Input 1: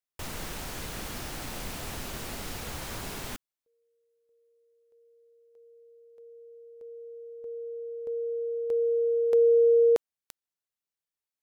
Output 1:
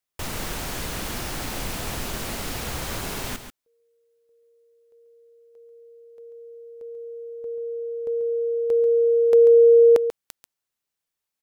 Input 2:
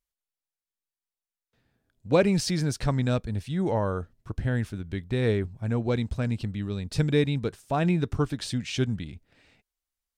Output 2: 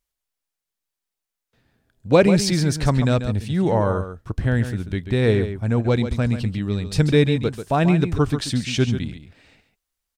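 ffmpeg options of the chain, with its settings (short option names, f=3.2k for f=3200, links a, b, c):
-af "aecho=1:1:139:0.316,volume=6.5dB"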